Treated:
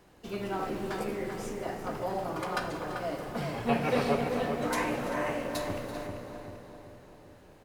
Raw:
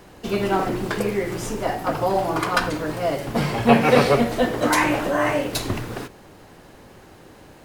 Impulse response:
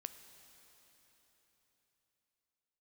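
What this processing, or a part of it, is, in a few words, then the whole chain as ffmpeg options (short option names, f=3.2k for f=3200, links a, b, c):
cave: -filter_complex "[0:a]asettb=1/sr,asplit=3[a][b][c];[a]atrim=end=0.594[d];[b]atrim=start=0.59:end=1.15,asetpts=PTS-STARTPTS,afade=t=in:d=0.004:c=qsin,afade=t=out:st=0.556:d=0.004:c=qsin,asplit=2[e][f];[f]adelay=13,volume=-2.5dB[g];[e][g]amix=inputs=2:normalize=0,atrim=end_sample=24696[h];[c]atrim=start=1.146[i];[d][h]acrossfade=d=0.004:c1=hsin:c2=qsin[j];[j][i]acrossfade=d=0.004:c1=qsin:c2=hsin,aecho=1:1:336:0.141,asplit=2[k][l];[l]adelay=390,lowpass=f=1.7k:p=1,volume=-4.5dB,asplit=2[m][n];[n]adelay=390,lowpass=f=1.7k:p=1,volume=0.54,asplit=2[o][p];[p]adelay=390,lowpass=f=1.7k:p=1,volume=0.54,asplit=2[q][r];[r]adelay=390,lowpass=f=1.7k:p=1,volume=0.54,asplit=2[s][t];[t]adelay=390,lowpass=f=1.7k:p=1,volume=0.54,asplit=2[u][v];[v]adelay=390,lowpass=f=1.7k:p=1,volume=0.54,asplit=2[w][x];[x]adelay=390,lowpass=f=1.7k:p=1,volume=0.54[y];[k][m][o][q][s][u][w][y]amix=inputs=8:normalize=0[z];[1:a]atrim=start_sample=2205[aa];[z][aa]afir=irnorm=-1:irlink=0,volume=-8.5dB"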